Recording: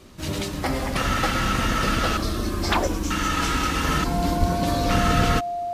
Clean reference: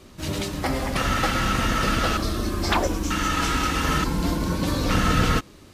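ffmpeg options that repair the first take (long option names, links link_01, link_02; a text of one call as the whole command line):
ffmpeg -i in.wav -filter_complex "[0:a]bandreject=frequency=700:width=30,asplit=3[link_01][link_02][link_03];[link_01]afade=type=out:start_time=4.39:duration=0.02[link_04];[link_02]highpass=frequency=140:width=0.5412,highpass=frequency=140:width=1.3066,afade=type=in:start_time=4.39:duration=0.02,afade=type=out:start_time=4.51:duration=0.02[link_05];[link_03]afade=type=in:start_time=4.51:duration=0.02[link_06];[link_04][link_05][link_06]amix=inputs=3:normalize=0" out.wav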